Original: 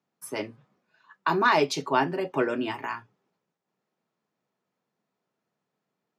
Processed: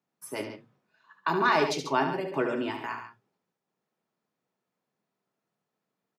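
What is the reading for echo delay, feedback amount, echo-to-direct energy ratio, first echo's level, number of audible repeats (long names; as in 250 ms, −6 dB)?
73 ms, repeats not evenly spaced, −6.0 dB, −8.0 dB, 2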